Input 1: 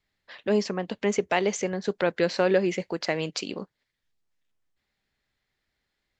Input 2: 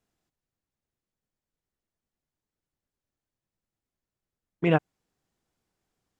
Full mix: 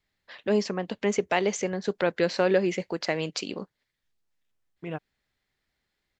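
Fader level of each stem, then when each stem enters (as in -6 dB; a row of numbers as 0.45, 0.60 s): -0.5, -13.0 dB; 0.00, 0.20 s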